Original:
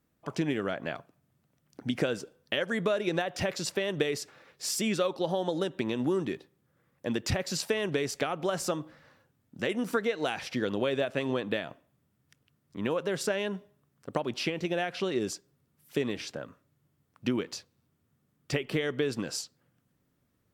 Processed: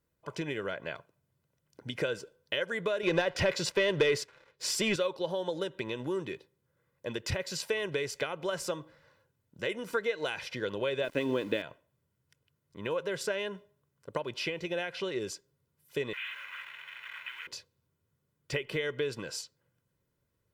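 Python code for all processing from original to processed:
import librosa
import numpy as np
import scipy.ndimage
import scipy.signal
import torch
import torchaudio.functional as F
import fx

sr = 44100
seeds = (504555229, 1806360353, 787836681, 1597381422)

y = fx.chain(x, sr, fx.leveller(passes=2),
    fx.high_shelf(hz=7500.0, db=-10.0), at=(3.03, 4.96))
y = fx.chain(y, sr, fx.sample_gate(floor_db=-44.5),
    fx.peak_eq(hz=280.0, db=13.0, octaves=0.68), at=(11.04, 11.62))
y = fx.chain(y, sr, fx.delta_mod(bps=16000, step_db=-28.0),
    fx.highpass(hz=1400.0, slope=24),
    fx.sample_gate(floor_db=-51.5), at=(16.13, 17.47))
y = y + 0.54 * np.pad(y, (int(2.0 * sr / 1000.0), 0))[:len(y)]
y = fx.dynamic_eq(y, sr, hz=2300.0, q=0.81, threshold_db=-46.0, ratio=4.0, max_db=4)
y = y * librosa.db_to_amplitude(-5.5)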